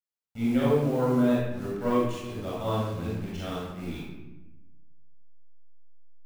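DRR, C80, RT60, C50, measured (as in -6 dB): -7.5 dB, 1.5 dB, 1.0 s, -3.0 dB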